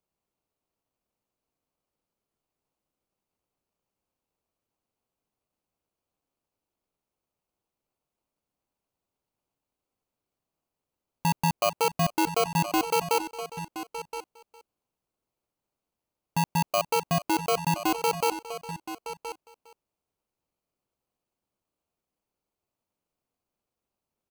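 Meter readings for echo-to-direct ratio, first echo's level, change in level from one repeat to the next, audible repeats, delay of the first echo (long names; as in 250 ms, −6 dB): −10.5 dB, −17.5 dB, repeats not evenly spaced, 3, 408 ms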